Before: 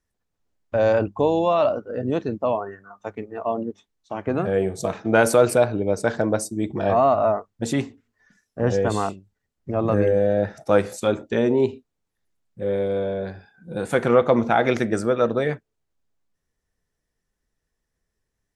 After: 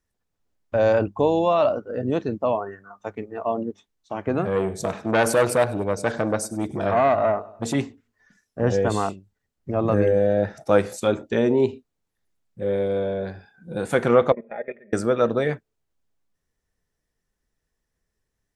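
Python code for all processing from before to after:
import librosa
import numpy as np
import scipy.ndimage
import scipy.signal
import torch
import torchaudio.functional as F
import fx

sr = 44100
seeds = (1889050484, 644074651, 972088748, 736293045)

y = fx.chain(x, sr, fx.echo_feedback(ms=99, feedback_pct=46, wet_db=-19),
    fx.transformer_sat(knee_hz=1100.0), at=(4.44, 7.75))
y = fx.chain(y, sr, fx.level_steps(step_db=19),
    fx.formant_cascade(vowel='e'),
    fx.comb(ms=4.9, depth=0.71), at=(14.32, 14.93))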